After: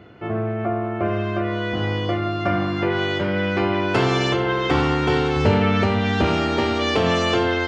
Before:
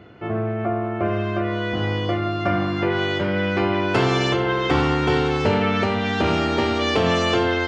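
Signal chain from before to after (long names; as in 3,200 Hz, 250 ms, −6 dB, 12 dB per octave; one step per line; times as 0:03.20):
0:05.36–0:06.25: low-shelf EQ 130 Hz +9.5 dB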